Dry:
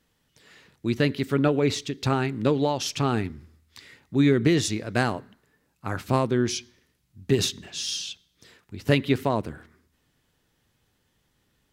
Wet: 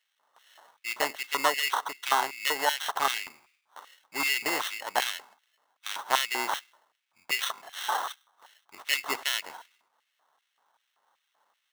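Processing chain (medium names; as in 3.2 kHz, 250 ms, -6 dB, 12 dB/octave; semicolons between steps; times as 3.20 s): sample-rate reducer 2.4 kHz, jitter 0%; LFO high-pass square 2.6 Hz 910–2400 Hz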